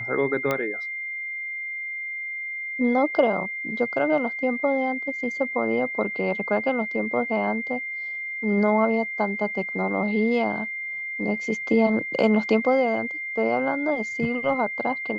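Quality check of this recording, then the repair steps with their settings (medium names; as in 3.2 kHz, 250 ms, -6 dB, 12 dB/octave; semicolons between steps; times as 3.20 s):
whine 2.1 kHz -29 dBFS
0.51 s: pop -11 dBFS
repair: de-click; band-stop 2.1 kHz, Q 30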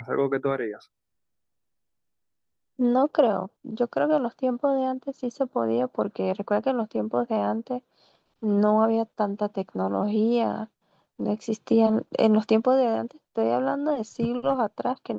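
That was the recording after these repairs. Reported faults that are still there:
nothing left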